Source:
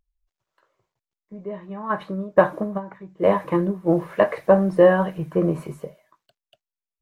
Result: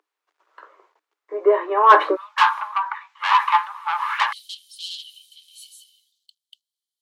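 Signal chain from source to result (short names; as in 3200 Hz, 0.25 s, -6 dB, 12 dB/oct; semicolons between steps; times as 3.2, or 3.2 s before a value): overdrive pedal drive 27 dB, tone 1400 Hz, clips at -1.5 dBFS; rippled Chebyshev high-pass 300 Hz, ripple 6 dB, from 2.15 s 840 Hz, from 4.31 s 3000 Hz; gain +4.5 dB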